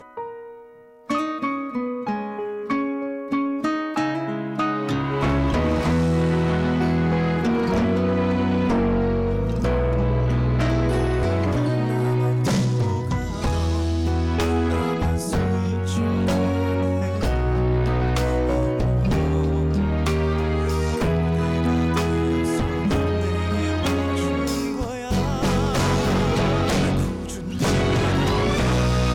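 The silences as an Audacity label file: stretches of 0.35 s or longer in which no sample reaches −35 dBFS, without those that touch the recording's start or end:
0.580000	1.090000	silence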